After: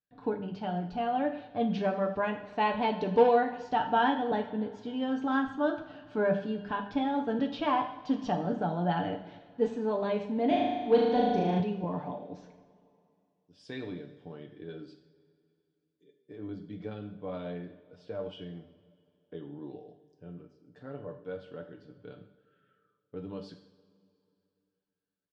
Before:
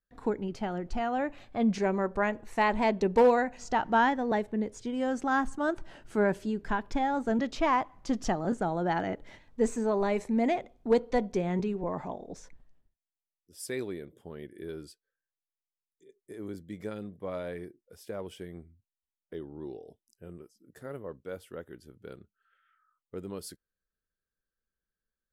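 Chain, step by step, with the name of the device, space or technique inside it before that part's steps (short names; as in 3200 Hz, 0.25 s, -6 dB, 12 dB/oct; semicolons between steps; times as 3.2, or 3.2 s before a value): dynamic EQ 3200 Hz, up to +5 dB, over -57 dBFS, Q 4.1; comb 6.8 ms, depth 54%; 10.47–11.6 flutter echo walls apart 6.4 m, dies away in 1.3 s; guitar cabinet (speaker cabinet 100–4000 Hz, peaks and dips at 100 Hz +4 dB, 190 Hz +3 dB, 380 Hz -4 dB, 1200 Hz -5 dB, 2000 Hz -10 dB); two-slope reverb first 0.6 s, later 2.7 s, from -18 dB, DRR 4 dB; gain -2 dB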